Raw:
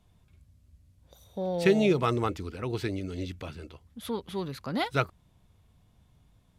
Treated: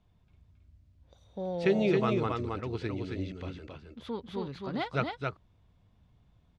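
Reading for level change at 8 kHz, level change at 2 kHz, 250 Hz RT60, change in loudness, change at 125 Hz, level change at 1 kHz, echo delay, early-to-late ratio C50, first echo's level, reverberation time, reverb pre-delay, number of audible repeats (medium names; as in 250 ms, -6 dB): under -10 dB, -3.0 dB, no reverb, -2.5 dB, -2.0 dB, -2.5 dB, 270 ms, no reverb, -3.5 dB, no reverb, no reverb, 1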